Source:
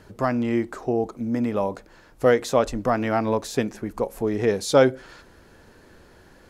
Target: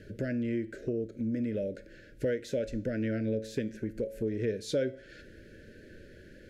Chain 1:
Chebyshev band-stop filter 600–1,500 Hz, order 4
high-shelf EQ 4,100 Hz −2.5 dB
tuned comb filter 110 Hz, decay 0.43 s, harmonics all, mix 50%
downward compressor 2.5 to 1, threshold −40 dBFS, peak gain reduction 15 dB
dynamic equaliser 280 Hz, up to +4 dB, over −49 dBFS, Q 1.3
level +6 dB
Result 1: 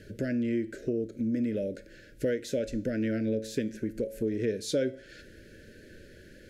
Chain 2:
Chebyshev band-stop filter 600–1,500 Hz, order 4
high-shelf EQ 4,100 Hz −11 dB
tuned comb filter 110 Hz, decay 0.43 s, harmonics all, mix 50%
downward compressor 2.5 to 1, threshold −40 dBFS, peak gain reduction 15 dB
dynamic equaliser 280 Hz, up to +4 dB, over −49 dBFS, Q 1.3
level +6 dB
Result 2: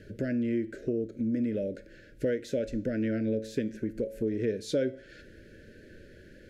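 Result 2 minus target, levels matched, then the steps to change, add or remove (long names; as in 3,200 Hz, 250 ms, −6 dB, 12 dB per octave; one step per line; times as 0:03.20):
125 Hz band −2.5 dB
change: dynamic equaliser 77 Hz, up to +4 dB, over −49 dBFS, Q 1.3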